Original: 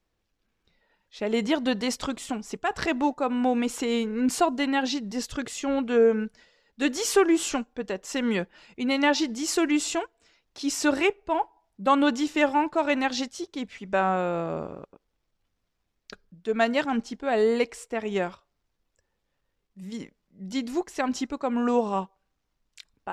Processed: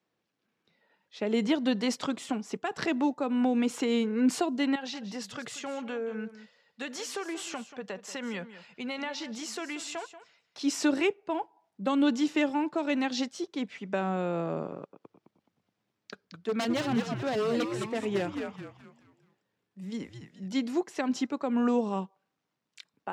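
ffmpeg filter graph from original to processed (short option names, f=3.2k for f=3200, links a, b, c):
-filter_complex "[0:a]asettb=1/sr,asplit=3[a][b][c];[a]atrim=end=4.754[d];[b]atrim=start=4.75:end=10.61,asetpts=PTS-STARTPTS,afade=t=in:d=0.004:c=qsin,afade=t=out:st=5.856:d=0.004:c=qsin,equalizer=f=310:w=1.6:g=-10.5,acompressor=threshold=-32dB:ratio=4:attack=3.2:release=140:knee=1:detection=peak,aecho=1:1:184:0.2,atrim=end_sample=258426[e];[c]atrim=start=10.606[f];[d][e]acrossfade=d=0.004:c1=hsin:c2=qsin[g];[g][f]acrossfade=d=0.004:c1=qsin:c2=hsin,asettb=1/sr,asplit=3[h][i][j];[h]atrim=end=14.834[k];[i]atrim=start=14.83:end=20.48,asetpts=PTS-STARTPTS,afade=t=in:d=0.004:c=qsin,afade=t=out:st=5.646:d=0.004:c=qsin,aeval=exprs='0.0944*(abs(mod(val(0)/0.0944+3,4)-2)-1)':c=same,asplit=6[l][m][n][o][p][q];[m]adelay=212,afreqshift=-110,volume=-6.5dB[r];[n]adelay=424,afreqshift=-220,volume=-14.5dB[s];[o]adelay=636,afreqshift=-330,volume=-22.4dB[t];[p]adelay=848,afreqshift=-440,volume=-30.4dB[u];[q]adelay=1060,afreqshift=-550,volume=-38.3dB[v];[l][r][s][t][u][v]amix=inputs=6:normalize=0,atrim=end_sample=249165[w];[j]atrim=start=20.476[x];[k][w]acrossfade=d=0.004:c1=hsin:c2=qsin[y];[y][x]acrossfade=d=0.004:c1=qsin:c2=hsin,highpass=f=130:w=0.5412,highpass=f=130:w=1.3066,highshelf=f=6.7k:g=-9.5,acrossover=split=400|3000[z][aa][ab];[aa]acompressor=threshold=-32dB:ratio=6[ac];[z][ac][ab]amix=inputs=3:normalize=0"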